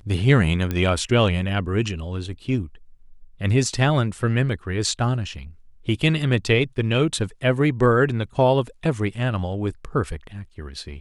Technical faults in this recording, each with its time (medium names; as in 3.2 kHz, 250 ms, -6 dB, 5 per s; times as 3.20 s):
0.71 s: pop -12 dBFS